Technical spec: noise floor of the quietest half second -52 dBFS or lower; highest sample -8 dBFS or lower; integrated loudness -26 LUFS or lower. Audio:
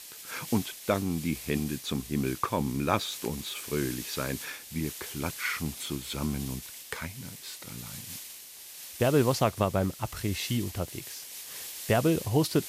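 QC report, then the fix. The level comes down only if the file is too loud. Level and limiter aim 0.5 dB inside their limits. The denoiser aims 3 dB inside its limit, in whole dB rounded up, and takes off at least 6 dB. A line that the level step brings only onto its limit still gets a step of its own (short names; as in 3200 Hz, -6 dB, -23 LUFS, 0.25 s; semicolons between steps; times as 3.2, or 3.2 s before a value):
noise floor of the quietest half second -46 dBFS: fail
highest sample -8.5 dBFS: OK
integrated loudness -31.0 LUFS: OK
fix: denoiser 9 dB, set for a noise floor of -46 dBFS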